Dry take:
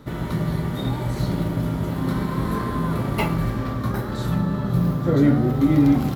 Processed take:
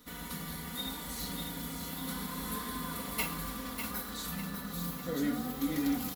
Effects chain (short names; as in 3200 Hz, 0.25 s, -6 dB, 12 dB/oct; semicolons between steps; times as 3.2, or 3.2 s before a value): pre-emphasis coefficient 0.9; comb 4.1 ms, depth 98%; on a send: thinning echo 0.598 s, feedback 44%, level -6.5 dB